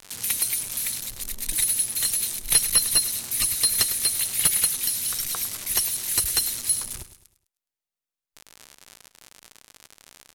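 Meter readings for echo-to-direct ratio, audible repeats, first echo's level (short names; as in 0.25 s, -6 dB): -13.0 dB, 3, -13.5 dB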